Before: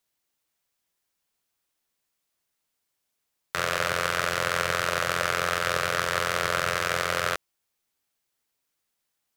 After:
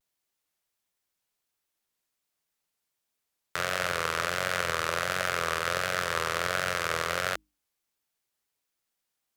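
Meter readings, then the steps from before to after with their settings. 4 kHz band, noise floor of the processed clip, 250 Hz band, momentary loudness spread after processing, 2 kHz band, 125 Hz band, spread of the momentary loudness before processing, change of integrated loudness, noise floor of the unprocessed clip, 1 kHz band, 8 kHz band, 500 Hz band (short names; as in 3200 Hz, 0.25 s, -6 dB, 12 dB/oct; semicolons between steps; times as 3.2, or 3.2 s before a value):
-3.0 dB, -83 dBFS, -3.0 dB, 2 LU, -3.0 dB, -3.5 dB, 3 LU, -3.0 dB, -80 dBFS, -3.0 dB, -3.0 dB, -3.0 dB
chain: notches 50/100/150/200/250/300 Hz; vibrato 1.4 Hz 95 cents; gain -3 dB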